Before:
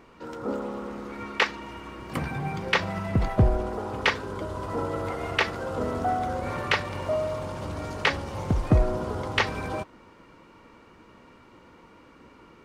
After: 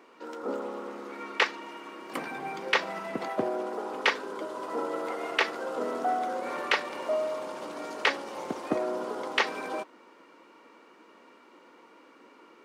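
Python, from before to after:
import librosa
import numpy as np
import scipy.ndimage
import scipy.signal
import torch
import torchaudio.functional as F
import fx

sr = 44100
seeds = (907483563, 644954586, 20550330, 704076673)

y = scipy.signal.sosfilt(scipy.signal.butter(4, 270.0, 'highpass', fs=sr, output='sos'), x)
y = y * librosa.db_to_amplitude(-1.5)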